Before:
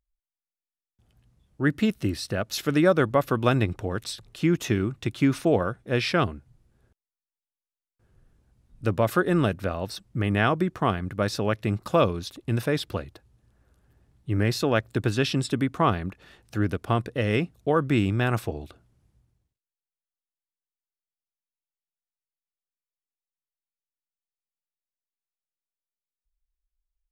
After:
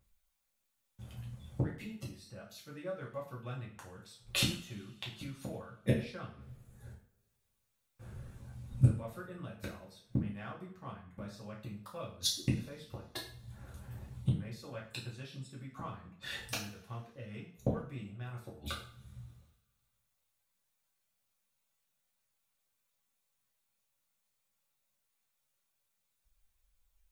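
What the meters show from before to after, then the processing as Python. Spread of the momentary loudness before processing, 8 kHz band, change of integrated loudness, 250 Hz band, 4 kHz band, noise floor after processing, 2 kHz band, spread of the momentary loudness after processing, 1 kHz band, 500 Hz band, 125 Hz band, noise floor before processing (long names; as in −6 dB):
9 LU, −5.0 dB, −14.0 dB, −16.0 dB, −6.5 dB, −81 dBFS, −16.0 dB, 18 LU, −20.5 dB, −19.0 dB, −10.0 dB, below −85 dBFS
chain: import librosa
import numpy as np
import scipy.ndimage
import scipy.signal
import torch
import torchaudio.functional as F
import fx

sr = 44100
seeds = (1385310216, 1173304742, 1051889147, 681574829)

p1 = fx.dereverb_blind(x, sr, rt60_s=0.71)
p2 = fx.graphic_eq_31(p1, sr, hz=(200, 315, 5000), db=(5, -9, -3))
p3 = 10.0 ** (-25.5 / 20.0) * np.tanh(p2 / 10.0 ** (-25.5 / 20.0))
p4 = p2 + F.gain(torch.from_numpy(p3), -11.0).numpy()
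p5 = fx.gate_flip(p4, sr, shuts_db=-27.0, range_db=-36)
p6 = fx.rev_double_slope(p5, sr, seeds[0], early_s=0.43, late_s=2.1, knee_db=-26, drr_db=-5.5)
y = F.gain(torch.from_numpy(p6), 6.5).numpy()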